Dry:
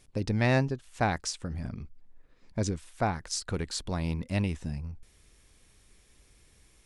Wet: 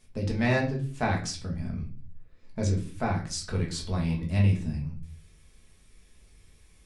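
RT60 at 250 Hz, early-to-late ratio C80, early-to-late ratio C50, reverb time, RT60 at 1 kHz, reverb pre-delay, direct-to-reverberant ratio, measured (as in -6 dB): 0.65 s, 15.0 dB, 8.5 dB, 0.45 s, 0.40 s, 5 ms, -2.5 dB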